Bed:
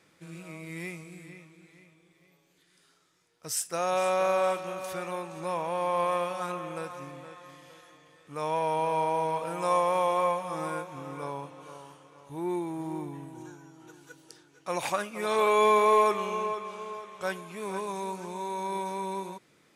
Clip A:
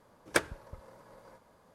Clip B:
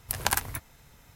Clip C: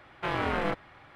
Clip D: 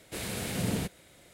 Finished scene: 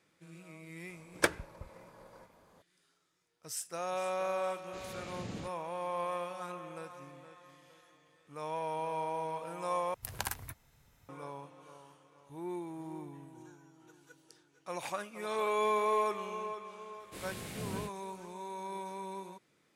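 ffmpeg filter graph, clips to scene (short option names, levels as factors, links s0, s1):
-filter_complex "[4:a]asplit=2[s0][s1];[0:a]volume=0.376[s2];[s0]aresample=16000,aresample=44100[s3];[2:a]equalizer=f=110:w=1.5:g=3.5[s4];[s1]flanger=delay=17.5:depth=7.6:speed=2.5[s5];[s2]asplit=2[s6][s7];[s6]atrim=end=9.944[s8];[s4]atrim=end=1.15,asetpts=PTS-STARTPTS,volume=0.282[s9];[s7]atrim=start=11.086[s10];[1:a]atrim=end=1.74,asetpts=PTS-STARTPTS,volume=0.944,afade=t=in:d=0.004:c=hsin,afade=t=out:st=1.736:d=0.004:c=hsin,adelay=880[s11];[s3]atrim=end=1.33,asetpts=PTS-STARTPTS,volume=0.251,afade=t=in:d=0.004:c=hsin,afade=t=out:st=1.326:d=0.004:c=hsin,adelay=203301S[s12];[s5]atrim=end=1.33,asetpts=PTS-STARTPTS,volume=0.473,afade=t=in:d=0.004:c=hsin,afade=t=out:st=1.326:d=0.004:c=hsin,adelay=749700S[s13];[s8][s9]acrossfade=d=0.004:c1=hsin:c2=hsin[s14];[s14][s10]acrossfade=d=0.004:c1=hsin:c2=hsin[s15];[s15][s11][s12][s13]amix=inputs=4:normalize=0"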